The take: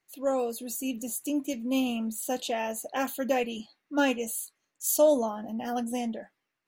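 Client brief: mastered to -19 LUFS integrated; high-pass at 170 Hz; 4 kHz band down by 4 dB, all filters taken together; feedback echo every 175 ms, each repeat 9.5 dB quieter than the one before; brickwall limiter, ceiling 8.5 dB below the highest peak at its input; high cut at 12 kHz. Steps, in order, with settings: high-pass 170 Hz; low-pass 12 kHz; peaking EQ 4 kHz -6 dB; peak limiter -21.5 dBFS; feedback delay 175 ms, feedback 33%, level -9.5 dB; trim +13 dB

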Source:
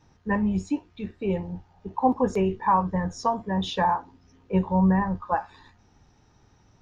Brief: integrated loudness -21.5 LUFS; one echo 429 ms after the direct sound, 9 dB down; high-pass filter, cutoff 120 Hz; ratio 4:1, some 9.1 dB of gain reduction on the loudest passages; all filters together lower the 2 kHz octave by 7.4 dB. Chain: high-pass 120 Hz; peaking EQ 2 kHz -9 dB; compression 4:1, threshold -28 dBFS; delay 429 ms -9 dB; trim +11.5 dB

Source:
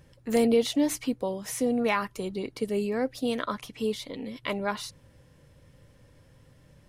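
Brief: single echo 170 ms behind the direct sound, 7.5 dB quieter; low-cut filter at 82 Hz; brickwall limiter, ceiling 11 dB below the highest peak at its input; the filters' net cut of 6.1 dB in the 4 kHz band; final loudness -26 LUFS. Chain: high-pass 82 Hz; peaking EQ 4 kHz -8 dB; peak limiter -24 dBFS; delay 170 ms -7.5 dB; trim +7.5 dB

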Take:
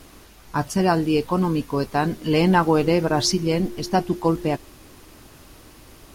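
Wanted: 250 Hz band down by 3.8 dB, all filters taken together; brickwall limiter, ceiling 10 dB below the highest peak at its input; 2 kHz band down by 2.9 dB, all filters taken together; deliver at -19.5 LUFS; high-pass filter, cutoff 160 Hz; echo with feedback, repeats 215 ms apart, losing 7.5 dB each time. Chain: high-pass 160 Hz; peaking EQ 250 Hz -4.5 dB; peaking EQ 2 kHz -4 dB; peak limiter -16.5 dBFS; feedback delay 215 ms, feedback 42%, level -7.5 dB; trim +7 dB

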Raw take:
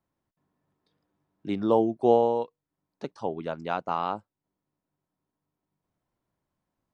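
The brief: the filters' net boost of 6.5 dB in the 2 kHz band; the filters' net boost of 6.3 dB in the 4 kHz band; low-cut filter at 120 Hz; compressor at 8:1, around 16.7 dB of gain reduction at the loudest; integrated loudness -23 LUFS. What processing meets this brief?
high-pass 120 Hz; peaking EQ 2 kHz +8.5 dB; peaking EQ 4 kHz +4.5 dB; compression 8:1, threshold -33 dBFS; trim +16.5 dB

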